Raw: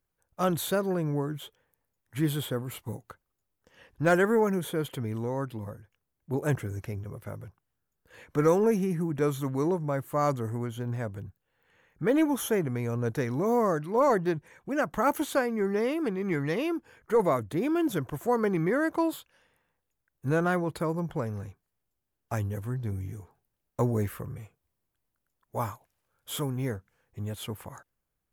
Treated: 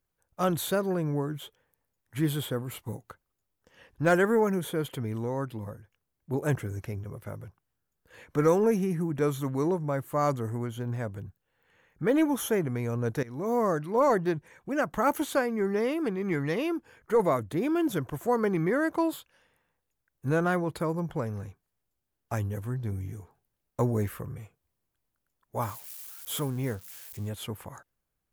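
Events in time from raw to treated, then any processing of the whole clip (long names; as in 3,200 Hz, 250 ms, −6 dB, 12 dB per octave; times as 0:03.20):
0:13.23–0:13.79: fade in equal-power, from −18 dB
0:25.62–0:27.29: spike at every zero crossing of −36.5 dBFS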